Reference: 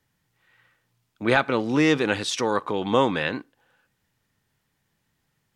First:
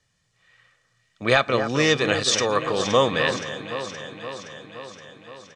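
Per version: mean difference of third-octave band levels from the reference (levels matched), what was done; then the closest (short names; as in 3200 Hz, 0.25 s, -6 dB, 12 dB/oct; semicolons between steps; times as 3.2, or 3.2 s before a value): 5.5 dB: LPF 7600 Hz 24 dB/oct; high shelf 4000 Hz +11 dB; comb 1.7 ms, depth 48%; on a send: echo with dull and thin repeats by turns 0.26 s, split 1800 Hz, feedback 79%, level -8.5 dB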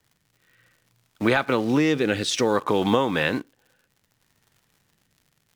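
4.0 dB: in parallel at -11 dB: bit-crush 6-bit; on the sum: rotary speaker horn 0.6 Hz; compressor 12:1, threshold -21 dBFS, peak gain reduction 10 dB; crackle 120/s -52 dBFS; gain +5 dB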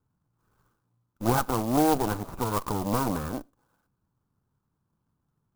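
10.5 dB: minimum comb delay 0.78 ms; LPF 1200 Hz 24 dB/oct; dynamic EQ 740 Hz, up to +4 dB, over -39 dBFS, Q 1.8; clock jitter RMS 0.063 ms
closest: second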